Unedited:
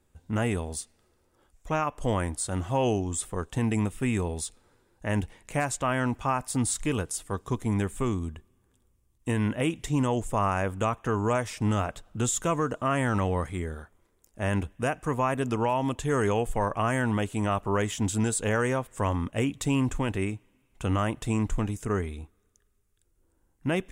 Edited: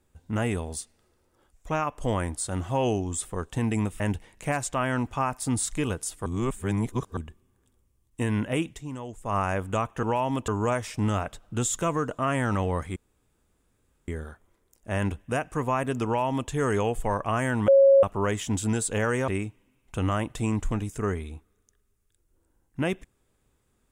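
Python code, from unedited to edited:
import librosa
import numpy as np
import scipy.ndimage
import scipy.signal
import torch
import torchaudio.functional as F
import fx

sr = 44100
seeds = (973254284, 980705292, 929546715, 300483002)

y = fx.edit(x, sr, fx.cut(start_s=4.0, length_s=1.08),
    fx.reverse_span(start_s=7.34, length_s=0.91),
    fx.fade_down_up(start_s=9.75, length_s=0.69, db=-11.0, fade_s=0.13),
    fx.insert_room_tone(at_s=13.59, length_s=1.12),
    fx.duplicate(start_s=15.56, length_s=0.45, to_s=11.11),
    fx.bleep(start_s=17.19, length_s=0.35, hz=548.0, db=-12.5),
    fx.cut(start_s=18.79, length_s=1.36), tone=tone)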